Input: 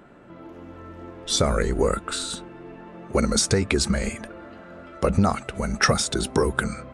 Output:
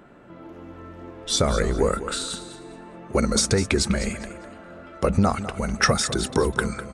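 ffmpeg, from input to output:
ffmpeg -i in.wav -af "aecho=1:1:202|404|606:0.224|0.0582|0.0151" out.wav

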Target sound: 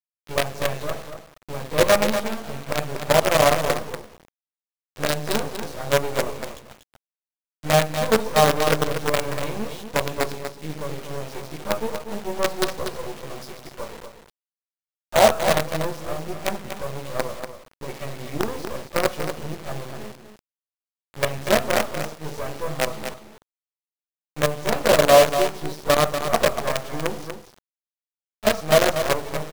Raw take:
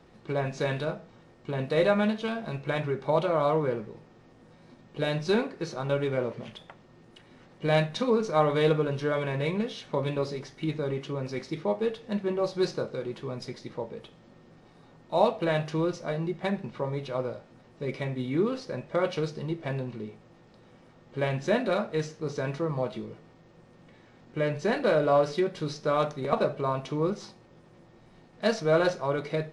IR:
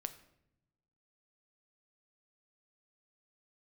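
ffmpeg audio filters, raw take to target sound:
-filter_complex "[0:a]asplit=2[link_01][link_02];[link_02]equalizer=frequency=660:width=1.2:gain=10.5[link_03];[1:a]atrim=start_sample=2205,adelay=14[link_04];[link_03][link_04]afir=irnorm=-1:irlink=0,volume=2dB[link_05];[link_01][link_05]amix=inputs=2:normalize=0,acrusher=bits=3:dc=4:mix=0:aa=0.000001,asplit=2[link_06][link_07];[link_07]aecho=0:1:240:0.376[link_08];[link_06][link_08]amix=inputs=2:normalize=0,volume=-2.5dB"

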